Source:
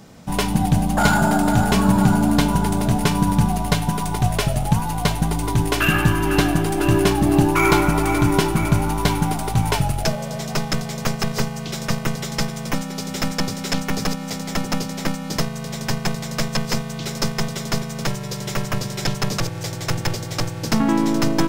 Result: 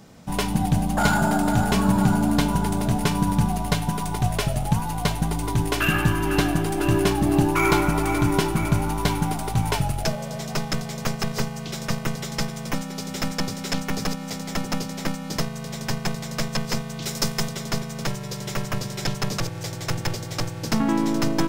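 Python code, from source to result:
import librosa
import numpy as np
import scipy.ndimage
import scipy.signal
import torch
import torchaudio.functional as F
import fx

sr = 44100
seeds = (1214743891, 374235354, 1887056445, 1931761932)

y = fx.high_shelf(x, sr, hz=4800.0, db=7.5, at=(17.02, 17.49))
y = y * 10.0 ** (-3.5 / 20.0)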